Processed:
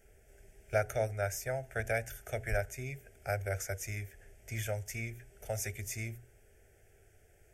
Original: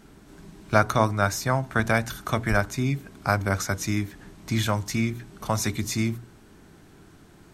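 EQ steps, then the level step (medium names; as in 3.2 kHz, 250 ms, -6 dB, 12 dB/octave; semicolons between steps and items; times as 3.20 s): static phaser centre 430 Hz, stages 4; static phaser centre 1.1 kHz, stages 6; band-stop 2.9 kHz, Q 29; -4.5 dB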